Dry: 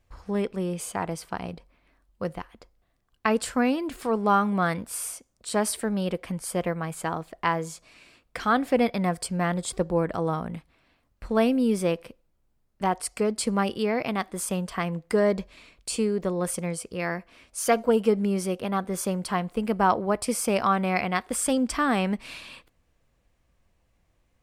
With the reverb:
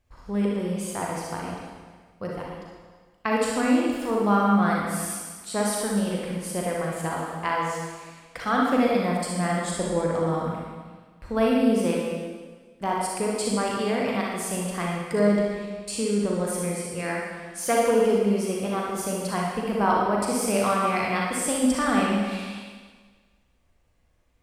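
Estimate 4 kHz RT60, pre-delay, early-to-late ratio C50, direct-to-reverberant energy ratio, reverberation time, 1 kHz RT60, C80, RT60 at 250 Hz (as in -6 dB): 1.4 s, 36 ms, -1.5 dB, -3.5 dB, 1.5 s, 1.5 s, 2.0 dB, 1.5 s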